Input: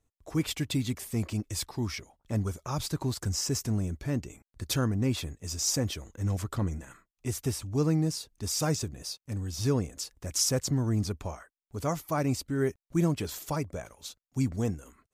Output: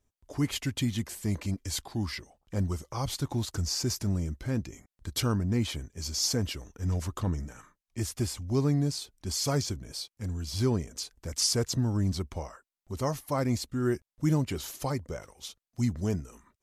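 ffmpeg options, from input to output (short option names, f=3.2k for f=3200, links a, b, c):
-af "asetrate=40131,aresample=44100"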